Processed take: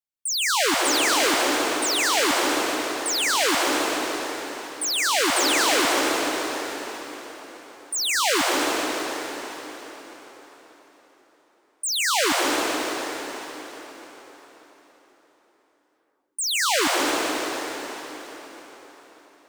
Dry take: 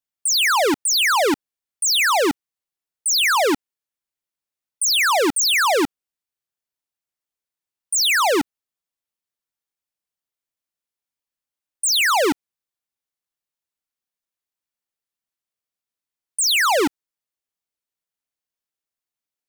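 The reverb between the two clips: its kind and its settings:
dense smooth reverb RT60 4.6 s, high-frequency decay 0.85×, pre-delay 115 ms, DRR −3.5 dB
level −7 dB

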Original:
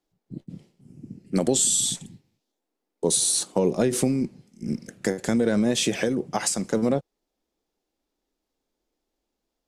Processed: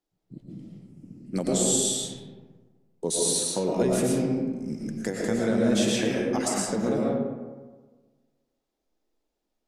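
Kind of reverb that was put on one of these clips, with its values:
comb and all-pass reverb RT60 1.4 s, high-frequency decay 0.45×, pre-delay 75 ms, DRR −3.5 dB
level −6 dB

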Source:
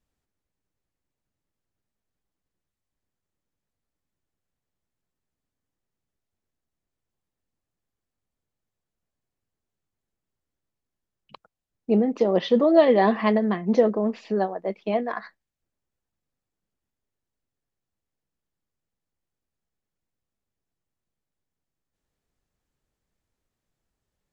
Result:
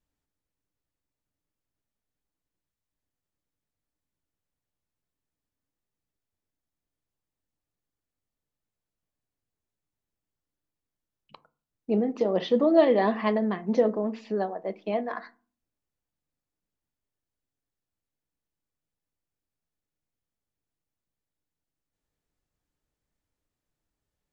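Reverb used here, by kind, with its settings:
feedback delay network reverb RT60 0.38 s, low-frequency decay 1.55×, high-frequency decay 0.4×, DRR 12.5 dB
level −4 dB

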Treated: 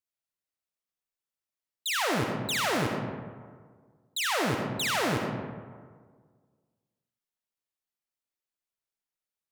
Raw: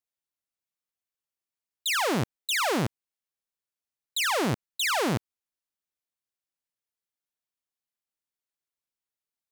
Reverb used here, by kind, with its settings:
comb and all-pass reverb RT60 1.7 s, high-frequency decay 0.45×, pre-delay 25 ms, DRR 1 dB
level −3.5 dB

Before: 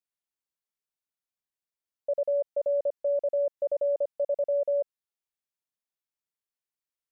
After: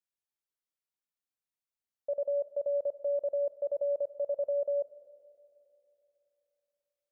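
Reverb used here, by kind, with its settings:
four-comb reverb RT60 3.3 s, combs from 29 ms, DRR 13.5 dB
level −4.5 dB

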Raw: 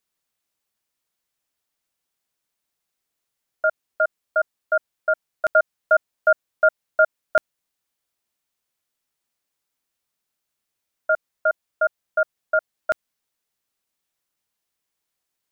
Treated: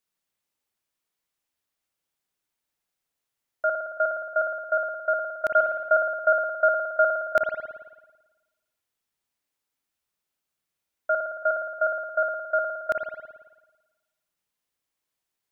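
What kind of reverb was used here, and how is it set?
spring reverb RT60 1.2 s, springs 55 ms, chirp 75 ms, DRR 3 dB
level −4 dB

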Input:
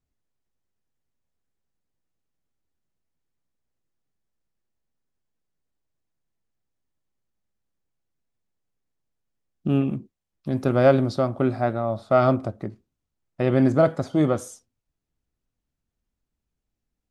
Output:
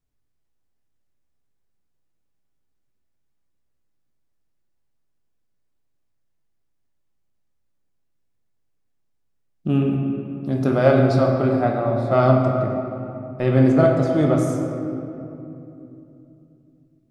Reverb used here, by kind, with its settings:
rectangular room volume 120 cubic metres, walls hard, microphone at 0.38 metres

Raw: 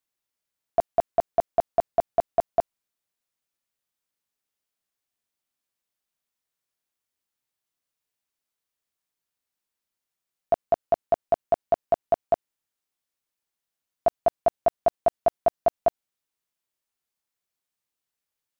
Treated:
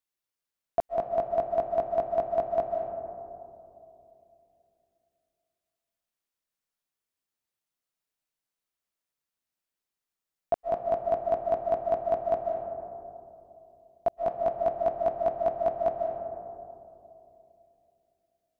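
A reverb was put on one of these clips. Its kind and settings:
comb and all-pass reverb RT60 2.9 s, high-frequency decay 0.25×, pre-delay 110 ms, DRR 3 dB
level −4.5 dB

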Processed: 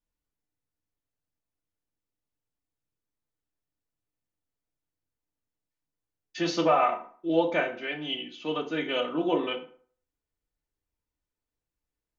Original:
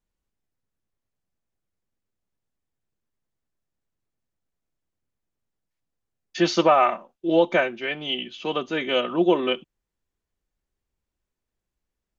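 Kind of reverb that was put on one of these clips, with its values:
feedback delay network reverb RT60 0.49 s, low-frequency decay 0.85×, high-frequency decay 0.65×, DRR 2 dB
level −7.5 dB

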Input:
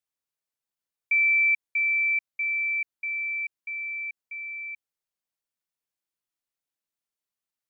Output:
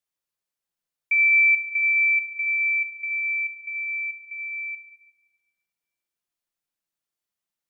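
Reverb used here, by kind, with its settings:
rectangular room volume 2,100 cubic metres, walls mixed, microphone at 0.88 metres
level +1 dB

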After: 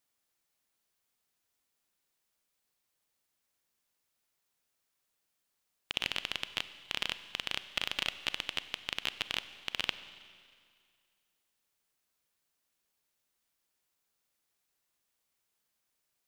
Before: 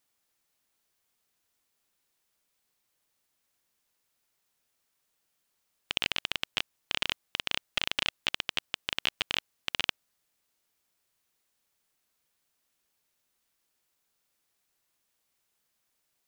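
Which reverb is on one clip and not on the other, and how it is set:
four-comb reverb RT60 2.1 s, combs from 31 ms, DRR 12.5 dB
level −4 dB

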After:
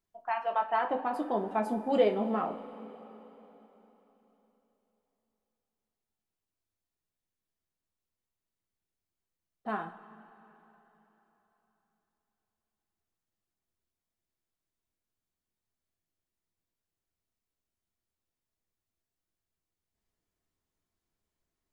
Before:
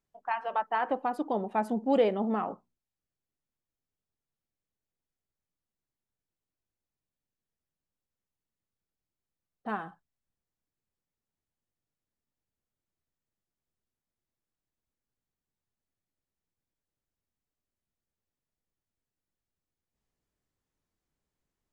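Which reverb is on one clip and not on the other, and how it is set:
coupled-rooms reverb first 0.23 s, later 3.8 s, from −20 dB, DRR 3 dB
level −2 dB

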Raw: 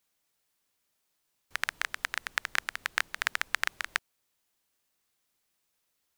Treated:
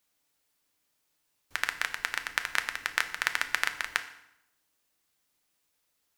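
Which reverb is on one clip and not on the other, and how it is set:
feedback delay network reverb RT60 0.81 s, low-frequency decay 1.2×, high-frequency decay 0.85×, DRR 7.5 dB
level +1 dB

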